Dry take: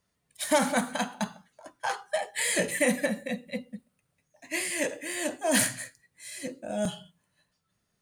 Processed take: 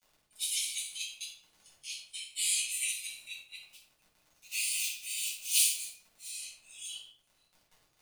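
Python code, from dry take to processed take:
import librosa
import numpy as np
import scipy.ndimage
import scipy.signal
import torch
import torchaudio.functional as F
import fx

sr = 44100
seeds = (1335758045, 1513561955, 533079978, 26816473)

y = fx.block_float(x, sr, bits=3, at=(3.68, 6.31))
y = scipy.signal.sosfilt(scipy.signal.butter(16, 2400.0, 'highpass', fs=sr, output='sos'), y)
y = fx.dmg_crackle(y, sr, seeds[0], per_s=45.0, level_db=-46.0)
y = fx.room_shoebox(y, sr, seeds[1], volume_m3=600.0, walls='furnished', distance_m=7.4)
y = y * librosa.db_to_amplitude(-7.0)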